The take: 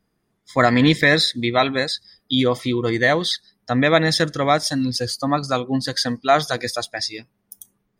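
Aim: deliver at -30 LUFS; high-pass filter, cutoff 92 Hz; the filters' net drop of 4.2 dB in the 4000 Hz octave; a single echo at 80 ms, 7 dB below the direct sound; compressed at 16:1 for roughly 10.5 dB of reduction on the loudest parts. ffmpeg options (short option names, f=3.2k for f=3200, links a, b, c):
-af "highpass=92,equalizer=f=4k:t=o:g=-5,acompressor=threshold=-21dB:ratio=16,aecho=1:1:80:0.447,volume=-3.5dB"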